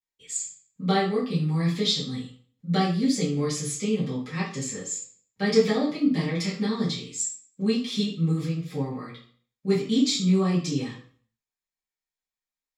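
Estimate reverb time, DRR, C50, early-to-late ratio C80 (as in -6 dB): 0.50 s, -9.0 dB, 6.5 dB, 11.5 dB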